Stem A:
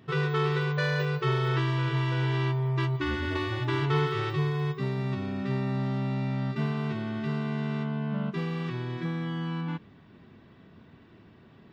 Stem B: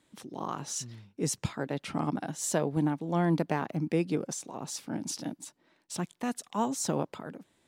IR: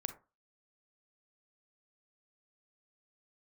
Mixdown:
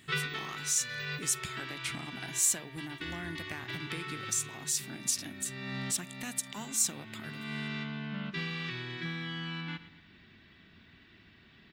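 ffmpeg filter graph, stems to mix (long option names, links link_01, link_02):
-filter_complex "[0:a]volume=0.5dB,asplit=2[link_01][link_02];[link_02]volume=-15.5dB[link_03];[1:a]acompressor=threshold=-31dB:ratio=5,aexciter=amount=4:drive=2.2:freq=6700,volume=-2dB,asplit=3[link_04][link_05][link_06];[link_05]volume=-12dB[link_07];[link_06]apad=whole_len=517167[link_08];[link_01][link_08]sidechaincompress=threshold=-45dB:ratio=8:attack=20:release=336[link_09];[2:a]atrim=start_sample=2205[link_10];[link_07][link_10]afir=irnorm=-1:irlink=0[link_11];[link_03]aecho=0:1:119|238|357|476|595|714:1|0.45|0.202|0.0911|0.041|0.0185[link_12];[link_09][link_04][link_11][link_12]amix=inputs=4:normalize=0,equalizer=frequency=125:width_type=o:width=1:gain=-9,equalizer=frequency=250:width_type=o:width=1:gain=-4,equalizer=frequency=500:width_type=o:width=1:gain=-11,equalizer=frequency=1000:width_type=o:width=1:gain=-8,equalizer=frequency=2000:width_type=o:width=1:gain=6,equalizer=frequency=4000:width_type=o:width=1:gain=6"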